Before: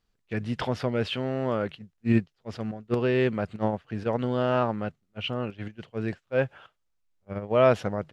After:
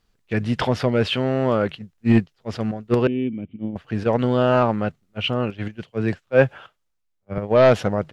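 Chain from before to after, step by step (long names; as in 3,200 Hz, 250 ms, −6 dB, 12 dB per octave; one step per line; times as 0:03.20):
0:03.07–0:03.76: formant resonators in series i
sine wavefolder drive 4 dB, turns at −7 dBFS
0:05.83–0:07.38: multiband upward and downward expander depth 40%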